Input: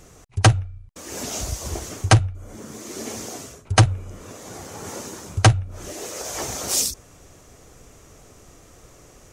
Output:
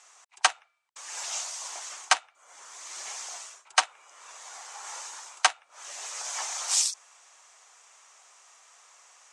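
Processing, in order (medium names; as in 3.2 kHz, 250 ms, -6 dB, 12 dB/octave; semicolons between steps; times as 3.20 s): frequency shift -17 Hz; Chebyshev band-pass 860–8500 Hz, order 3; trim -1.5 dB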